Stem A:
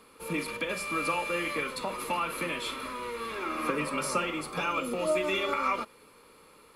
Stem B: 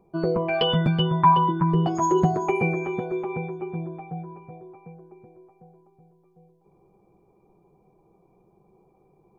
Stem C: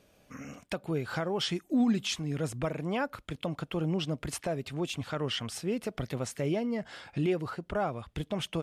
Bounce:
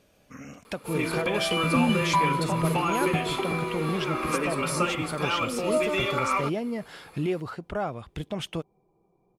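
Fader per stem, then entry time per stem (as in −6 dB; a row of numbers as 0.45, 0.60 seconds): +2.5, −7.0, +1.0 decibels; 0.65, 0.90, 0.00 seconds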